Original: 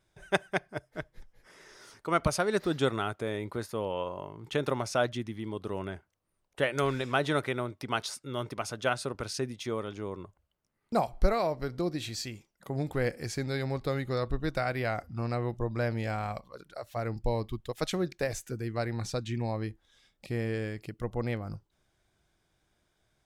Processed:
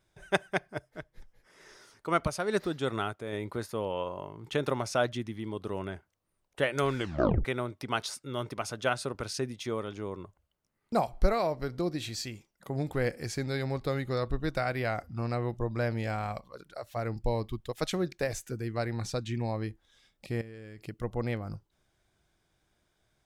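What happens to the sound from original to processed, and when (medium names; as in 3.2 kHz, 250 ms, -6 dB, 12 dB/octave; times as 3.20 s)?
0.83–3.33 s: tremolo 2.3 Hz, depth 48%
6.96 s: tape stop 0.49 s
20.41–20.88 s: compression 10:1, threshold -41 dBFS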